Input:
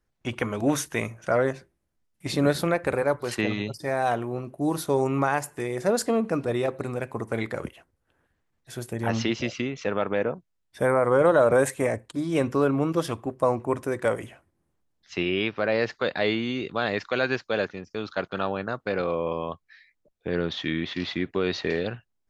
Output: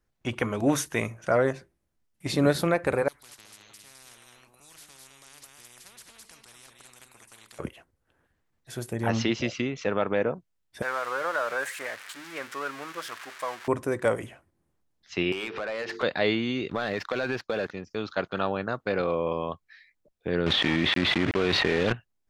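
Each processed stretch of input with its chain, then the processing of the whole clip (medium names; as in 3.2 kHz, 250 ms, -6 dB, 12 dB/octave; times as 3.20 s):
3.08–7.59 s: amplifier tone stack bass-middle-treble 6-0-2 + delay 210 ms -10.5 dB + spectrum-flattening compressor 10:1
10.82–13.68 s: zero-crossing glitches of -15 dBFS + band-pass filter 1.6 kHz, Q 1.8
15.32–16.03 s: hum notches 50/100/150/200/250/300/350/400/450 Hz + compression 10:1, threshold -39 dBFS + overdrive pedal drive 24 dB, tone 4.4 kHz, clips at -21.5 dBFS
16.70–17.71 s: waveshaping leveller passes 2 + compression 12:1, threshold -24 dBFS + treble shelf 6.7 kHz -8.5 dB
20.46–21.93 s: block-companded coder 3-bit + Chebyshev low-pass 2.9 kHz + level flattener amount 100%
whole clip: none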